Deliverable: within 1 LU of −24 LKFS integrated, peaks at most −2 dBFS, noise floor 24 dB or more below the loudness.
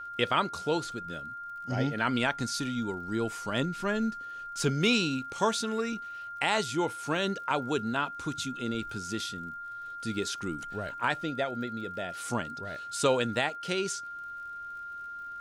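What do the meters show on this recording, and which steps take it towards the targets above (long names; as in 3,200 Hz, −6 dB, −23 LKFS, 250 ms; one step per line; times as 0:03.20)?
crackle rate 54 per second; interfering tone 1,400 Hz; level of the tone −38 dBFS; integrated loudness −31.5 LKFS; sample peak −13.5 dBFS; target loudness −24.0 LKFS
→ click removal
notch filter 1,400 Hz, Q 30
level +7.5 dB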